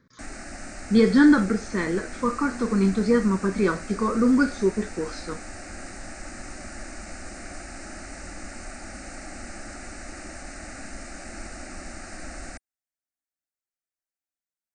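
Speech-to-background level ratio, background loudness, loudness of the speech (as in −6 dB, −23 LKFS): 17.0 dB, −39.5 LKFS, −22.5 LKFS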